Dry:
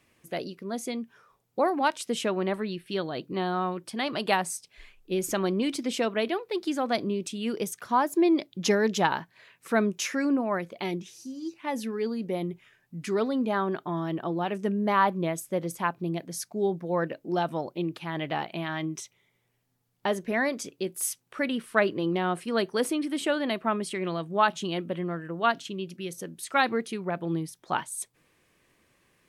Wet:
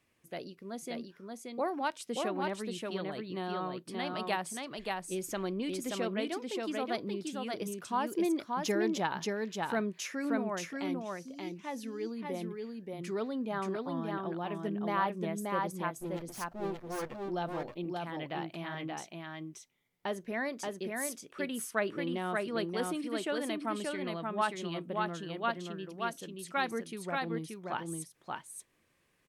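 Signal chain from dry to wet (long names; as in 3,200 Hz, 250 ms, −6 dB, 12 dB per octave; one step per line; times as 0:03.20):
0:16.00–0:17.27: lower of the sound and its delayed copy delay 8.2 ms
single-tap delay 579 ms −3 dB
level −8.5 dB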